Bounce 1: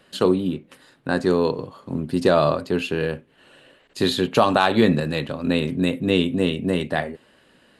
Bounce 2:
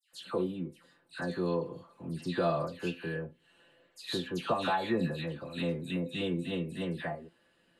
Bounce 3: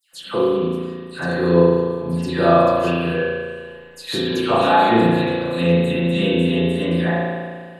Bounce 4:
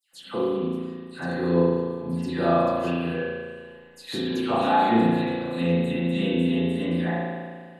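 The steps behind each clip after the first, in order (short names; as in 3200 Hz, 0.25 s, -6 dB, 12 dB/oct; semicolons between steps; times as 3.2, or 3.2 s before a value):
resonator 170 Hz, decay 0.16 s, harmonics all, mix 80%; dispersion lows, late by 0.132 s, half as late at 1900 Hz; gain -5.5 dB
high shelf 5100 Hz +5 dB; spring tank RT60 1.7 s, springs 35 ms, chirp 60 ms, DRR -6 dB; gain +8 dB
small resonant body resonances 240/790/2000 Hz, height 8 dB, ringing for 40 ms; gain -8.5 dB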